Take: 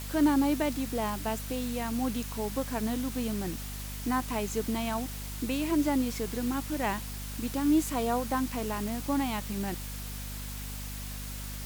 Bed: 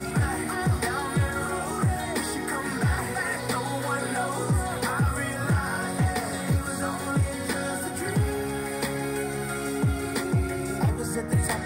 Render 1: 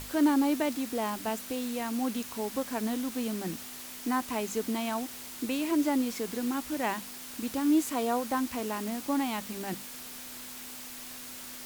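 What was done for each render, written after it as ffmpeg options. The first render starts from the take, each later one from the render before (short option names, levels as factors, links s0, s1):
-af "bandreject=f=50:t=h:w=6,bandreject=f=100:t=h:w=6,bandreject=f=150:t=h:w=6,bandreject=f=200:t=h:w=6"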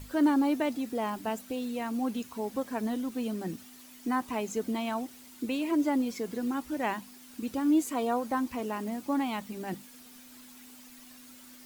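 -af "afftdn=nr=11:nf=-43"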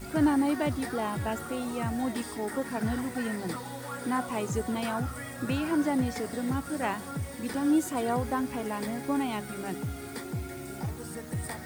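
-filter_complex "[1:a]volume=0.299[s0];[0:a][s0]amix=inputs=2:normalize=0"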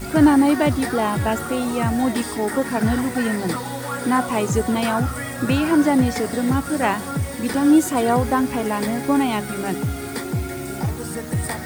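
-af "volume=3.35"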